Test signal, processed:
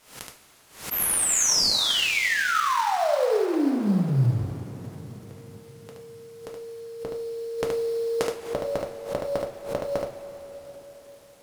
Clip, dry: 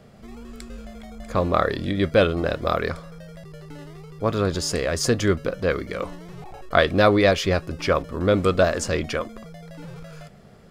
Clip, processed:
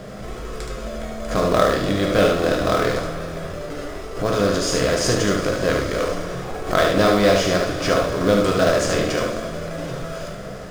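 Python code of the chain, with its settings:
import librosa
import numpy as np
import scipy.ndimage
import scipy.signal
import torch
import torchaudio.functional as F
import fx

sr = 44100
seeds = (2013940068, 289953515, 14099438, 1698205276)

p1 = fx.bin_compress(x, sr, power=0.6)
p2 = fx.low_shelf(p1, sr, hz=69.0, db=6.5)
p3 = fx.rev_double_slope(p2, sr, seeds[0], early_s=0.31, late_s=4.7, knee_db=-18, drr_db=0.5)
p4 = fx.sample_hold(p3, sr, seeds[1], rate_hz=4800.0, jitter_pct=20)
p5 = p3 + (p4 * librosa.db_to_amplitude(-11.0))
p6 = fx.dmg_crackle(p5, sr, seeds[2], per_s=390.0, level_db=-44.0)
p7 = p6 + fx.echo_single(p6, sr, ms=73, db=-4.5, dry=0)
p8 = fx.dynamic_eq(p7, sr, hz=5600.0, q=0.96, threshold_db=-34.0, ratio=4.0, max_db=4)
p9 = fx.pre_swell(p8, sr, db_per_s=120.0)
y = p9 * librosa.db_to_amplitude(-7.0)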